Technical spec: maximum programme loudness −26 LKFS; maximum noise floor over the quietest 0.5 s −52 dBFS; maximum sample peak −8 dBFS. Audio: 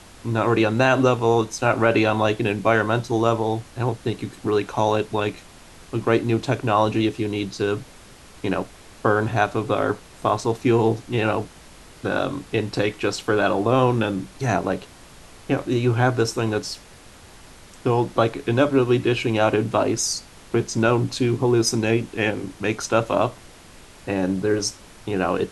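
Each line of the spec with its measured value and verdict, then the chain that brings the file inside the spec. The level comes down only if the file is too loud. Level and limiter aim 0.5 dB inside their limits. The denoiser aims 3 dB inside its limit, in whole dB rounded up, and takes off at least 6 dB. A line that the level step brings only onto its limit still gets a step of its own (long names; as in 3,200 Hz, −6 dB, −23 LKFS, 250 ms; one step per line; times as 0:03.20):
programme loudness −22.0 LKFS: out of spec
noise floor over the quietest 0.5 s −46 dBFS: out of spec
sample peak −4.0 dBFS: out of spec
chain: broadband denoise 6 dB, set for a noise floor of −46 dBFS
level −4.5 dB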